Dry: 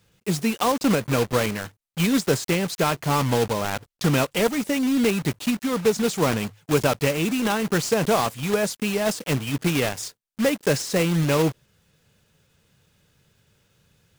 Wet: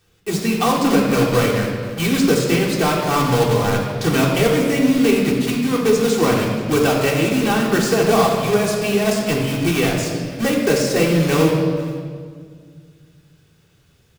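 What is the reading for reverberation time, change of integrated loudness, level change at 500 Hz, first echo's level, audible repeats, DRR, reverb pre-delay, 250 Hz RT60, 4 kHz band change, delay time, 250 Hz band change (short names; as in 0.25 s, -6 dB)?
1.9 s, +5.5 dB, +6.5 dB, -19.0 dB, 1, -3.5 dB, 3 ms, 2.5 s, +4.5 dB, 0.48 s, +6.0 dB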